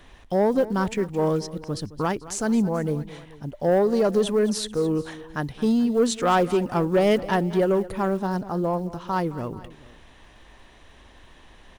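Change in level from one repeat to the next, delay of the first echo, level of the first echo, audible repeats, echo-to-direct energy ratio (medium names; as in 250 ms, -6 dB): -4.5 dB, 217 ms, -17.0 dB, 2, -15.5 dB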